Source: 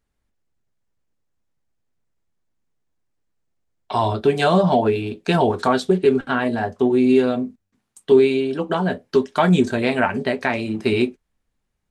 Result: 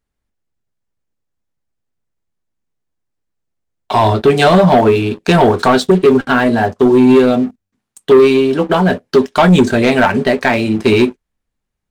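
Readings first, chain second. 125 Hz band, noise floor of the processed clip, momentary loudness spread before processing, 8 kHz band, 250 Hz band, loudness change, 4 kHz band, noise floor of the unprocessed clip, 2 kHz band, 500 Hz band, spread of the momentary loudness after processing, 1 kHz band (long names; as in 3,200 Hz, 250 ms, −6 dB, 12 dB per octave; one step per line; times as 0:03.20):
+8.0 dB, −77 dBFS, 7 LU, can't be measured, +8.0 dB, +8.0 dB, +8.5 dB, −75 dBFS, +8.5 dB, +7.5 dB, 6 LU, +8.0 dB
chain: leveller curve on the samples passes 2
level +2.5 dB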